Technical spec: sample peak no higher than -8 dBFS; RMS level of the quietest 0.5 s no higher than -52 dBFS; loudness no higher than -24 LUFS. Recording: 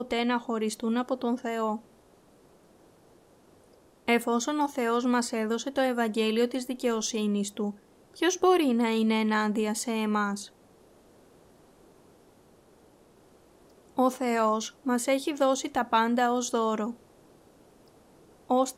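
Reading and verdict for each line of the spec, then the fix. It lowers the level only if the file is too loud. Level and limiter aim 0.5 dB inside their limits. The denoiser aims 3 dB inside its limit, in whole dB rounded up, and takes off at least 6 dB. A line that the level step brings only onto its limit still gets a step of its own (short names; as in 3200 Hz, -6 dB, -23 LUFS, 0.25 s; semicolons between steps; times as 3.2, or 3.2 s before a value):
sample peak -11.0 dBFS: OK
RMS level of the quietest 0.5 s -59 dBFS: OK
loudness -27.5 LUFS: OK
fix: none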